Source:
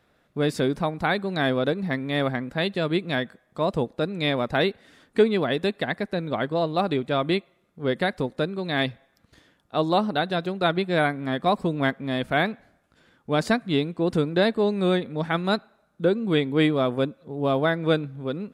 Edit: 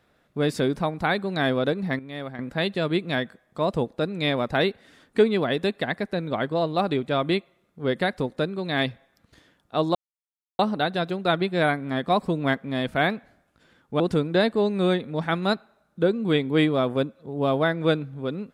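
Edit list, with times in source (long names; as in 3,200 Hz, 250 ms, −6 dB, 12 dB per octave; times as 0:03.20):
0:01.99–0:02.39: clip gain −10 dB
0:09.95: splice in silence 0.64 s
0:13.36–0:14.02: remove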